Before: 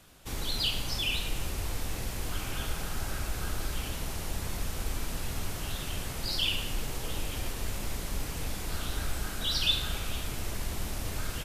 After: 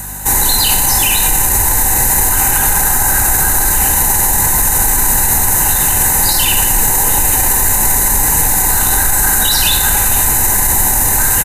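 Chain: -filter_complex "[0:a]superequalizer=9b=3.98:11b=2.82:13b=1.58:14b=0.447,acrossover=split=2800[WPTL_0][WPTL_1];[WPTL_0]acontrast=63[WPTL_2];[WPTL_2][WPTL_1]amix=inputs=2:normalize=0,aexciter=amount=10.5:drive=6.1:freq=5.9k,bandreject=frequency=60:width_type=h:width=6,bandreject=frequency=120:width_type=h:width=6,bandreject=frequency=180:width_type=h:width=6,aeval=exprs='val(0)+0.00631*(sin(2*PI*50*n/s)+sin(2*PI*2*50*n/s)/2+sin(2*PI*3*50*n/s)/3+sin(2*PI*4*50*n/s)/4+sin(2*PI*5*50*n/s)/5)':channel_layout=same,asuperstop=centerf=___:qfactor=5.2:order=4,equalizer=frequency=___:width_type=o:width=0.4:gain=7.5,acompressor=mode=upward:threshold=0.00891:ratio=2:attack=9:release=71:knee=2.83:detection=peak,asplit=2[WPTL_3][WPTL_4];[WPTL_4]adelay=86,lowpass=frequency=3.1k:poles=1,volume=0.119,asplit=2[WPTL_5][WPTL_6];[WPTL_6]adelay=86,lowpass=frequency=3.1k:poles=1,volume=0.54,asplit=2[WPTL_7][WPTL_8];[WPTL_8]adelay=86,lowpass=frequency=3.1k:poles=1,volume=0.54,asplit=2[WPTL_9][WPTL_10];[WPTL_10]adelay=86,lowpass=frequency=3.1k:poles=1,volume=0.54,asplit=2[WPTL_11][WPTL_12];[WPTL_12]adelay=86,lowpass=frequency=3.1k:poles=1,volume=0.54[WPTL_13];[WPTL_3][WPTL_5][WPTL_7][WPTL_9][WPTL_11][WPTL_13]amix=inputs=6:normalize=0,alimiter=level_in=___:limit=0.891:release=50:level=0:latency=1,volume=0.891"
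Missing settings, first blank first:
3300, 4.2k, 5.96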